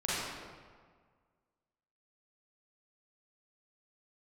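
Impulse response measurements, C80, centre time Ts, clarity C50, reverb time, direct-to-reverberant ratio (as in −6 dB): −1.0 dB, 128 ms, −5.0 dB, 1.7 s, −9.5 dB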